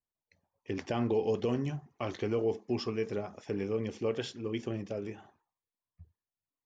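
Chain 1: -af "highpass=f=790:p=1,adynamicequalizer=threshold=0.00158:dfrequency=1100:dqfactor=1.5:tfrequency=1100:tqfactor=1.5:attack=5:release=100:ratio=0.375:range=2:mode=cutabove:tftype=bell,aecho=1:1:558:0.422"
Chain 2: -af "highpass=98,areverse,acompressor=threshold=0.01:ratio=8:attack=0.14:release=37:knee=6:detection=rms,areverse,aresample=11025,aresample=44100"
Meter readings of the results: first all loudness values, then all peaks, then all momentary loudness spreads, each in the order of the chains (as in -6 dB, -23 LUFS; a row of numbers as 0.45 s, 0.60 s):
-40.5 LUFS, -46.5 LUFS; -23.5 dBFS, -37.0 dBFS; 13 LU, 15 LU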